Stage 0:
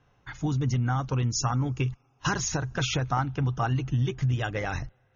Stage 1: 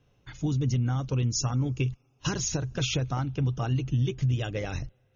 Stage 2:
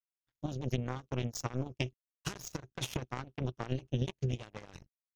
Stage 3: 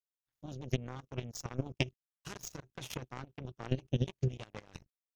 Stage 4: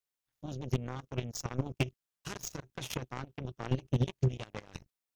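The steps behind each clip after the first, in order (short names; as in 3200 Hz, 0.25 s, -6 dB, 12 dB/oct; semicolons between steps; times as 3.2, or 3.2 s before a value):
band shelf 1200 Hz -8.5 dB
crossover distortion -55 dBFS; power-law curve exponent 3; gain +1.5 dB
level quantiser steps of 16 dB; gain +4.5 dB
hard clip -22.5 dBFS, distortion -13 dB; gain +4 dB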